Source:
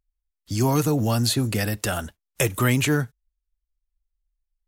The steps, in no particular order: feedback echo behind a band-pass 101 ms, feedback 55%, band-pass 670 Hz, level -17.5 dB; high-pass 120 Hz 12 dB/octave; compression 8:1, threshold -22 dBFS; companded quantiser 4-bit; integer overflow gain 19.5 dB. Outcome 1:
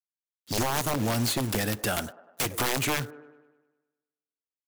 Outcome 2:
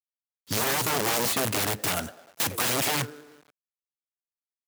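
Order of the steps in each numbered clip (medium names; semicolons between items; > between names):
high-pass > companded quantiser > feedback echo behind a band-pass > compression > integer overflow; feedback echo behind a band-pass > integer overflow > compression > companded quantiser > high-pass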